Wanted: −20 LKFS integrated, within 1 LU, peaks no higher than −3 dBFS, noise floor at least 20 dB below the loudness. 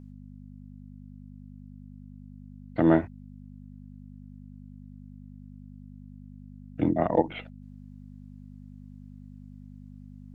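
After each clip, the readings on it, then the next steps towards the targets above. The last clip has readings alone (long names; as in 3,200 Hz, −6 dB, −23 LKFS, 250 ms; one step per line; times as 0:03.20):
mains hum 50 Hz; hum harmonics up to 250 Hz; level of the hum −43 dBFS; integrated loudness −26.5 LKFS; sample peak −7.0 dBFS; target loudness −20.0 LKFS
→ hum removal 50 Hz, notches 5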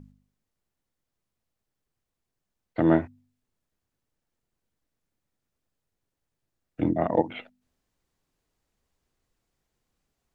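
mains hum none found; integrated loudness −26.0 LKFS; sample peak −6.5 dBFS; target loudness −20.0 LKFS
→ level +6 dB
brickwall limiter −3 dBFS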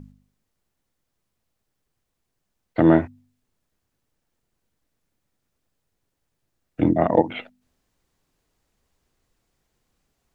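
integrated loudness −20.5 LKFS; sample peak −3.0 dBFS; background noise floor −78 dBFS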